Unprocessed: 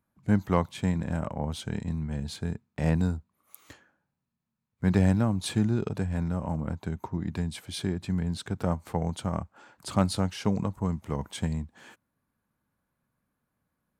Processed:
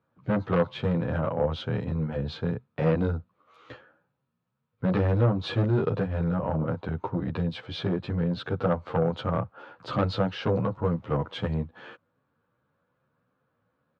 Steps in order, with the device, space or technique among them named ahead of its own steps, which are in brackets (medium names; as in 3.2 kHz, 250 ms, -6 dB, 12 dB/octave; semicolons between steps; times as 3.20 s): barber-pole flanger into a guitar amplifier (endless flanger 11 ms +2.6 Hz; saturation -26.5 dBFS, distortion -11 dB; cabinet simulation 96–3700 Hz, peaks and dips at 120 Hz +4 dB, 210 Hz -5 dB, 500 Hz +10 dB, 1.3 kHz +6 dB, 2.1 kHz -4 dB); trim +8 dB